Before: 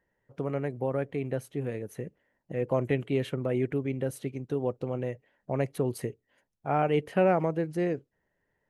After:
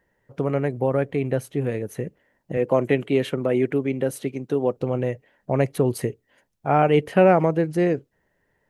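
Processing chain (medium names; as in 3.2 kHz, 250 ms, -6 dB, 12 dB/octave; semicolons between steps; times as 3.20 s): 2.57–4.77 s: high-pass 170 Hz 12 dB/octave; trim +8 dB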